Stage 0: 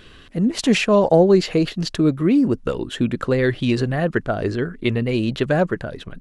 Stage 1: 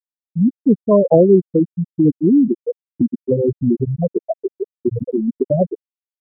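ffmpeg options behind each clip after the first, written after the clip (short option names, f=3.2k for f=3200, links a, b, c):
-filter_complex "[0:a]afftfilt=real='re*gte(hypot(re,im),0.794)':imag='im*gte(hypot(re,im),0.794)':win_size=1024:overlap=0.75,asplit=2[a][b];[b]acompressor=threshold=-24dB:ratio=6,volume=-1dB[c];[a][c]amix=inputs=2:normalize=0,volume=1.5dB"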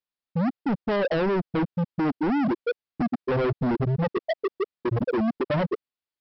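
-af "alimiter=limit=-12.5dB:level=0:latency=1:release=27,aresample=11025,asoftclip=type=hard:threshold=-26dB,aresample=44100,volume=4dB"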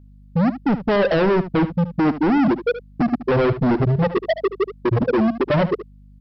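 -af "aeval=exprs='val(0)+0.00282*(sin(2*PI*50*n/s)+sin(2*PI*2*50*n/s)/2+sin(2*PI*3*50*n/s)/3+sin(2*PI*4*50*n/s)/4+sin(2*PI*5*50*n/s)/5)':c=same,aecho=1:1:74:0.224,volume=6.5dB"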